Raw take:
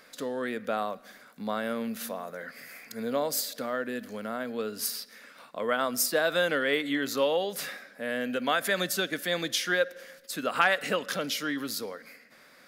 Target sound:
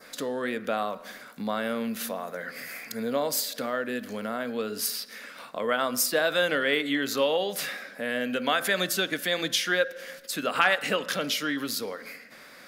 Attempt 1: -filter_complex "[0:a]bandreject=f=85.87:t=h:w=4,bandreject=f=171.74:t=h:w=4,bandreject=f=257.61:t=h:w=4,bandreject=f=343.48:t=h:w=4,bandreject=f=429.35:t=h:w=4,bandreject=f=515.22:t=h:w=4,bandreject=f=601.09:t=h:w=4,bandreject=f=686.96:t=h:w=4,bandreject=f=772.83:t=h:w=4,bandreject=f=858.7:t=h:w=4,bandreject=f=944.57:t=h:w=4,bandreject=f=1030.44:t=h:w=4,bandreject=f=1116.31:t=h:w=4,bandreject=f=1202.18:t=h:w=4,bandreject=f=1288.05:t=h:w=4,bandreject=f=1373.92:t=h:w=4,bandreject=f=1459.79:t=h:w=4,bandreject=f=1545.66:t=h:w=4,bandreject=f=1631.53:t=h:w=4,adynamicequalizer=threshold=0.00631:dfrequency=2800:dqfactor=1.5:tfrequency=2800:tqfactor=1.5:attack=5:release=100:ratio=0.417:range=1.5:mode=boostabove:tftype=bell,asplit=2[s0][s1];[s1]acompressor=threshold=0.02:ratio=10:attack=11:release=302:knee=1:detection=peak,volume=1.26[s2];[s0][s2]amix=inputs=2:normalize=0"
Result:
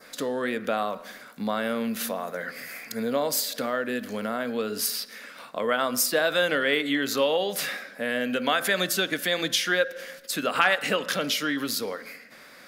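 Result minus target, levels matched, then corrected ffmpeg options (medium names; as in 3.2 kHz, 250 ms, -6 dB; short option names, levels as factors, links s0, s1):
compression: peak gain reduction -7 dB
-filter_complex "[0:a]bandreject=f=85.87:t=h:w=4,bandreject=f=171.74:t=h:w=4,bandreject=f=257.61:t=h:w=4,bandreject=f=343.48:t=h:w=4,bandreject=f=429.35:t=h:w=4,bandreject=f=515.22:t=h:w=4,bandreject=f=601.09:t=h:w=4,bandreject=f=686.96:t=h:w=4,bandreject=f=772.83:t=h:w=4,bandreject=f=858.7:t=h:w=4,bandreject=f=944.57:t=h:w=4,bandreject=f=1030.44:t=h:w=4,bandreject=f=1116.31:t=h:w=4,bandreject=f=1202.18:t=h:w=4,bandreject=f=1288.05:t=h:w=4,bandreject=f=1373.92:t=h:w=4,bandreject=f=1459.79:t=h:w=4,bandreject=f=1545.66:t=h:w=4,bandreject=f=1631.53:t=h:w=4,adynamicequalizer=threshold=0.00631:dfrequency=2800:dqfactor=1.5:tfrequency=2800:tqfactor=1.5:attack=5:release=100:ratio=0.417:range=1.5:mode=boostabove:tftype=bell,asplit=2[s0][s1];[s1]acompressor=threshold=0.00841:ratio=10:attack=11:release=302:knee=1:detection=peak,volume=1.26[s2];[s0][s2]amix=inputs=2:normalize=0"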